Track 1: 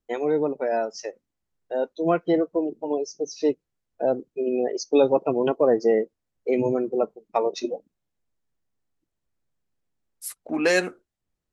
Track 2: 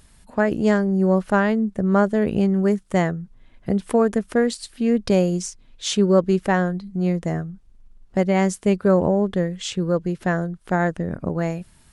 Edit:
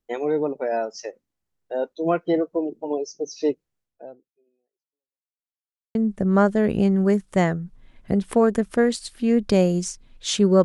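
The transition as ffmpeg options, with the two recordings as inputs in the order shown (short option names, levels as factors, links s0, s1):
-filter_complex "[0:a]apad=whole_dur=10.64,atrim=end=10.64,asplit=2[s0][s1];[s0]atrim=end=5.32,asetpts=PTS-STARTPTS,afade=t=out:st=3.81:d=1.51:c=exp[s2];[s1]atrim=start=5.32:end=5.95,asetpts=PTS-STARTPTS,volume=0[s3];[1:a]atrim=start=1.53:end=6.22,asetpts=PTS-STARTPTS,afade=t=in:d=0.004:c=hsin[s4];[s2][s3][s4]concat=n=3:v=0:a=1"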